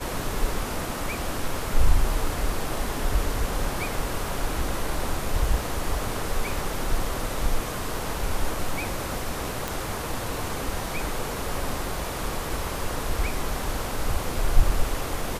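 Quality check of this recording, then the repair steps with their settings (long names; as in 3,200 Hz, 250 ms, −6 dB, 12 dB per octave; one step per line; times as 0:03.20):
0:09.68: click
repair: click removal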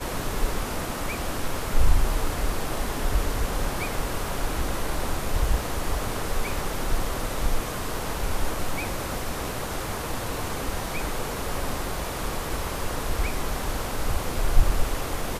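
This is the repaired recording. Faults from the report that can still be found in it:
none of them is left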